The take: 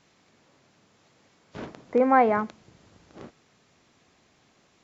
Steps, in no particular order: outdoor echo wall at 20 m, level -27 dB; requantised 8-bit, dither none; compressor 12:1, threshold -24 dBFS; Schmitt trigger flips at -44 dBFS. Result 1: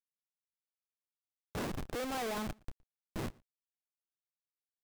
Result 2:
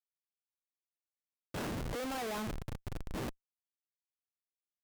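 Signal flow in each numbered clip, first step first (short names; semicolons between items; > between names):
compressor > Schmitt trigger > requantised > outdoor echo; compressor > requantised > outdoor echo > Schmitt trigger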